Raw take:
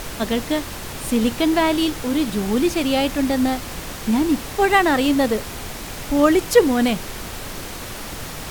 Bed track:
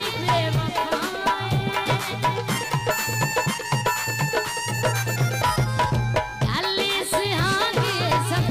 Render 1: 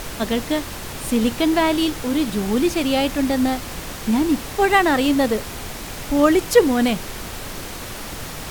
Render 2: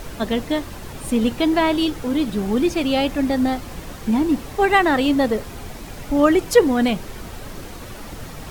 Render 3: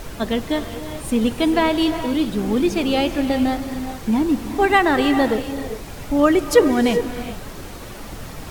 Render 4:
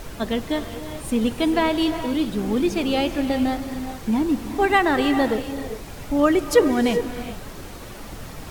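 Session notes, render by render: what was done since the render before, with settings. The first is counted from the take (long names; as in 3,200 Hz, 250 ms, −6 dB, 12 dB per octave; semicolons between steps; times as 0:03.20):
no processing that can be heard
broadband denoise 8 dB, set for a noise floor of −32 dBFS
reverb whose tail is shaped and stops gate 440 ms rising, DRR 9 dB
level −2.5 dB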